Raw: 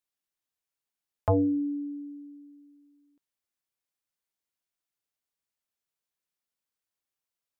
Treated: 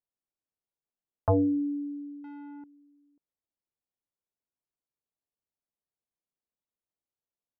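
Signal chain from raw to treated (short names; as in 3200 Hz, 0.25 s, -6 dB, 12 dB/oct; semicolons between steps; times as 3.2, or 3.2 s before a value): 2.24–2.64 sample leveller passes 5; low-pass opened by the level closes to 740 Hz, open at -30.5 dBFS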